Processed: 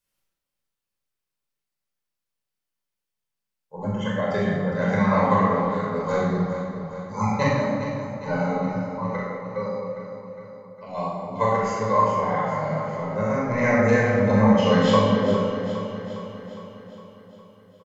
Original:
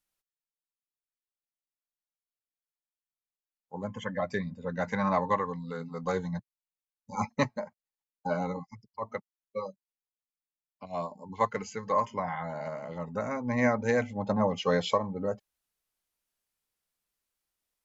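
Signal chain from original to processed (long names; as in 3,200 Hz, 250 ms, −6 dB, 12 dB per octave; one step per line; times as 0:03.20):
double-tracking delay 38 ms −5 dB
on a send: repeating echo 409 ms, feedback 59%, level −11 dB
on the sum: rectangular room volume 2,100 cubic metres, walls mixed, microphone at 5.1 metres
level −1.5 dB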